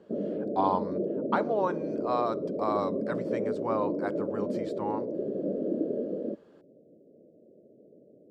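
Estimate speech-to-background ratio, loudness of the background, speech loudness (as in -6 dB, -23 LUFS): -0.5 dB, -32.5 LUFS, -33.0 LUFS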